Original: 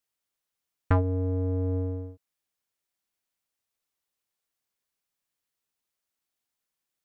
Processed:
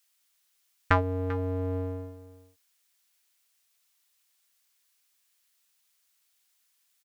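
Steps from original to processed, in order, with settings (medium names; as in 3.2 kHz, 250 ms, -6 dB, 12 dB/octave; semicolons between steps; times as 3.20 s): tilt shelf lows -9.5 dB, about 870 Hz; delay 392 ms -16.5 dB; trim +5 dB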